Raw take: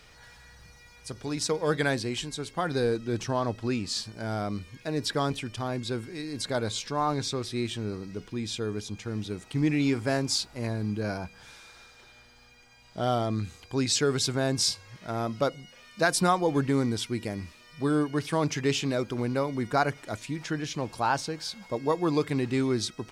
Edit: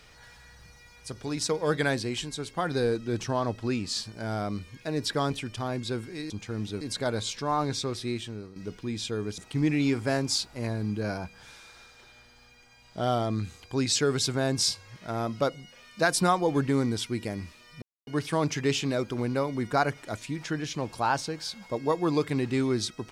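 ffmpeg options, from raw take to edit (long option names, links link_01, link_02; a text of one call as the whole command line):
ffmpeg -i in.wav -filter_complex "[0:a]asplit=7[link_01][link_02][link_03][link_04][link_05][link_06][link_07];[link_01]atrim=end=6.302[link_08];[link_02]atrim=start=8.868:end=9.382[link_09];[link_03]atrim=start=6.298:end=8.05,asetpts=PTS-STARTPTS,afade=type=out:start_time=1.202:duration=0.55:silence=0.237137[link_10];[link_04]atrim=start=8.05:end=8.872,asetpts=PTS-STARTPTS,afade=type=in:duration=0.004:curve=hsin:silence=0.237137[link_11];[link_05]atrim=start=9.378:end=17.82,asetpts=PTS-STARTPTS,afade=type=out:start_time=8.438:duration=0.004:curve=hsin[link_12];[link_06]atrim=start=17.82:end=18.07,asetpts=PTS-STARTPTS,volume=0[link_13];[link_07]atrim=start=18.07,asetpts=PTS-STARTPTS,afade=type=in:duration=0.004:curve=hsin[link_14];[link_08][link_09]acrossfade=duration=0.004:curve1=hsin:curve2=hsin[link_15];[link_10][link_11]concat=n=2:v=0:a=1[link_16];[link_15][link_16]acrossfade=duration=0.004:curve1=hsin:curve2=hsin[link_17];[link_12][link_13][link_14]concat=n=3:v=0:a=1[link_18];[link_17][link_18]acrossfade=duration=0.004:curve1=hsin:curve2=hsin" out.wav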